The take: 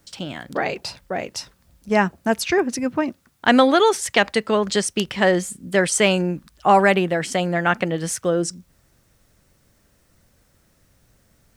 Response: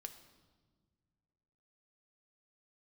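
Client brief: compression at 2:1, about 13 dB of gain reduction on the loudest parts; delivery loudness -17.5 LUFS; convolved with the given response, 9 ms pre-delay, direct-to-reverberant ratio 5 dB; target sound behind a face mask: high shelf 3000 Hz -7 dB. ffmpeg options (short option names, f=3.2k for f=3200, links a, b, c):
-filter_complex "[0:a]acompressor=threshold=-35dB:ratio=2,asplit=2[a][b];[1:a]atrim=start_sample=2205,adelay=9[c];[b][c]afir=irnorm=-1:irlink=0,volume=0dB[d];[a][d]amix=inputs=2:normalize=0,highshelf=f=3k:g=-7,volume=13dB"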